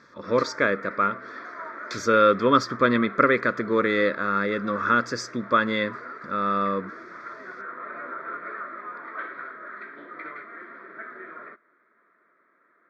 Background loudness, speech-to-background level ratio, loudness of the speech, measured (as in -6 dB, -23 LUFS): -38.5 LUFS, 15.5 dB, -23.0 LUFS